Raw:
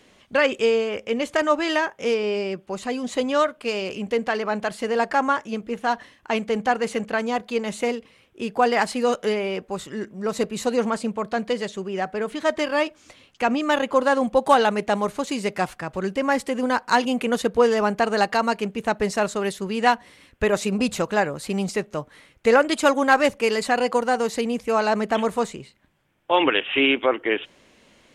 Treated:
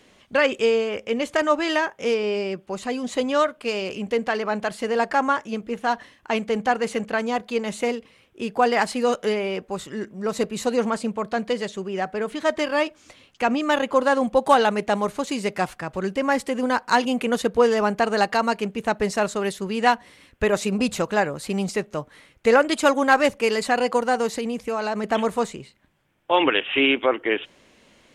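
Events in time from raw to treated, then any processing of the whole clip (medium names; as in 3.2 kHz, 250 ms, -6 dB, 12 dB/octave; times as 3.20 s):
24.34–25.04 s: compression 4:1, threshold -22 dBFS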